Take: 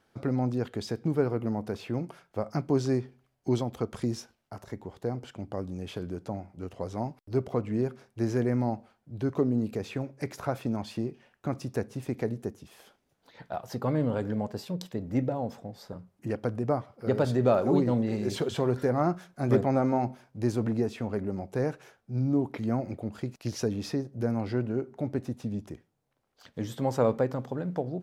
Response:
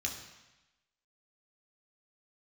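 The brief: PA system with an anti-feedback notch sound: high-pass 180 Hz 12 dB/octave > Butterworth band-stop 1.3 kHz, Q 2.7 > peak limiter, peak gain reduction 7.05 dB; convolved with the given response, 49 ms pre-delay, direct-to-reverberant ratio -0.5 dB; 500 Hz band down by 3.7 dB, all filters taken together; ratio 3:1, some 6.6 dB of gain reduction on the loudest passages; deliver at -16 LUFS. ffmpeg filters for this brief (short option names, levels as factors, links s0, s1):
-filter_complex "[0:a]equalizer=f=500:t=o:g=-4.5,acompressor=threshold=0.0355:ratio=3,asplit=2[s0][s1];[1:a]atrim=start_sample=2205,adelay=49[s2];[s1][s2]afir=irnorm=-1:irlink=0,volume=0.794[s3];[s0][s3]amix=inputs=2:normalize=0,highpass=180,asuperstop=centerf=1300:order=8:qfactor=2.7,volume=8.91,alimiter=limit=0.562:level=0:latency=1"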